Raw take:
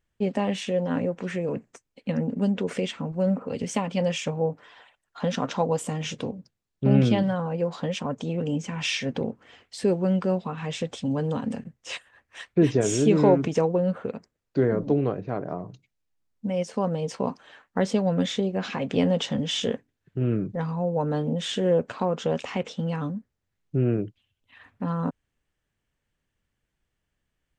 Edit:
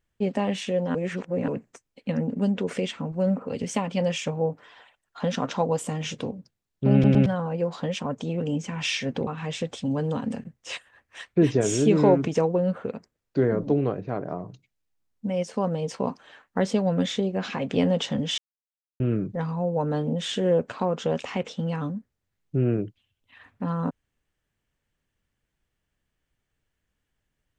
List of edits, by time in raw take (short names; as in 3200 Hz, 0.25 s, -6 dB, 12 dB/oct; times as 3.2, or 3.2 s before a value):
0.95–1.48 reverse
6.93 stutter in place 0.11 s, 3 plays
9.27–10.47 cut
19.58–20.2 mute